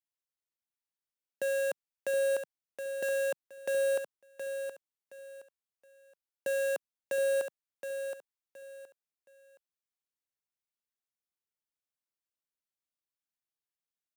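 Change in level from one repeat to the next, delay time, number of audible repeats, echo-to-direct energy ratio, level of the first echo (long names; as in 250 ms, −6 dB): −11.5 dB, 720 ms, 3, −7.0 dB, −7.5 dB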